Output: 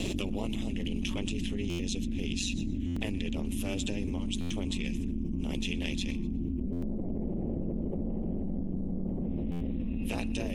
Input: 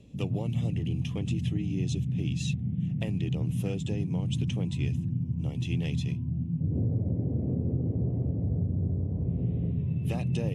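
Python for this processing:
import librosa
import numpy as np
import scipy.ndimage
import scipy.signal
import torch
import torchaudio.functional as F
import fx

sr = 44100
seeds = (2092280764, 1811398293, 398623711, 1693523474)

p1 = fx.tilt_shelf(x, sr, db=-5.0, hz=970.0)
p2 = p1 * np.sin(2.0 * np.pi * 96.0 * np.arange(len(p1)) / sr)
p3 = p2 + fx.echo_thinned(p2, sr, ms=123, feedback_pct=30, hz=420.0, wet_db=-21.0, dry=0)
p4 = fx.buffer_glitch(p3, sr, at_s=(1.69, 2.86, 4.4, 6.72, 9.51), block=512, repeats=8)
y = fx.env_flatten(p4, sr, amount_pct=100)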